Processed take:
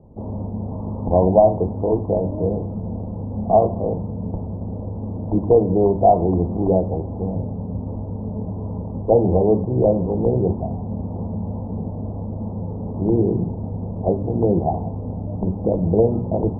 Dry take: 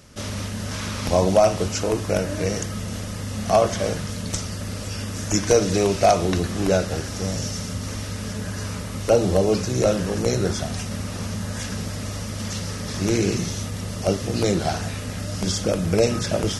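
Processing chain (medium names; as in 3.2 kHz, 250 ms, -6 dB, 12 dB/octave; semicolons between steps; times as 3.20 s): steep low-pass 940 Hz 72 dB/octave; band-stop 580 Hz, Q 12; de-hum 48.77 Hz, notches 6; trim +4 dB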